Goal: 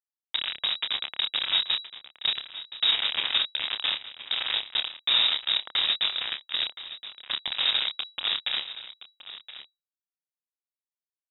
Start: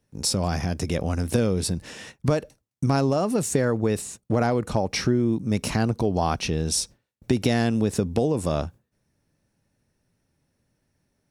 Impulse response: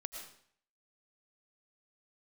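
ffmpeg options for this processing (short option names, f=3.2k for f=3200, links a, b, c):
-filter_complex "[0:a]equalizer=f=180:w=0.4:g=10,alimiter=limit=-7.5dB:level=0:latency=1:release=304,flanger=delay=7.4:depth=6.3:regen=83:speed=0.18:shape=triangular,afftfilt=real='hypot(re,im)*cos(2*PI*random(0))':imag='hypot(re,im)*sin(2*PI*random(1))':win_size=512:overlap=0.75,aresample=11025,acrusher=bits=3:mix=0:aa=0.000001,aresample=44100,asplit=2[a][b];[b]adelay=28,volume=-7dB[c];[a][c]amix=inputs=2:normalize=0,aecho=1:1:1021:0.188,lowpass=f=3.3k:t=q:w=0.5098,lowpass=f=3.3k:t=q:w=0.6013,lowpass=f=3.3k:t=q:w=0.9,lowpass=f=3.3k:t=q:w=2.563,afreqshift=-3900"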